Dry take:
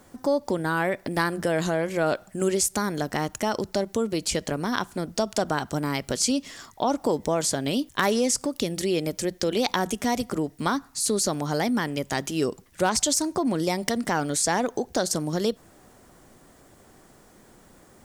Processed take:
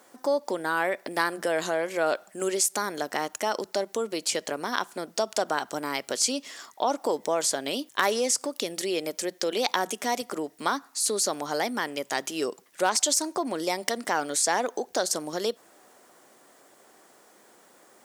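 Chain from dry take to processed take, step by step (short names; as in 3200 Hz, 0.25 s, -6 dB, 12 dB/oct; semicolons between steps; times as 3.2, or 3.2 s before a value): HPF 410 Hz 12 dB/oct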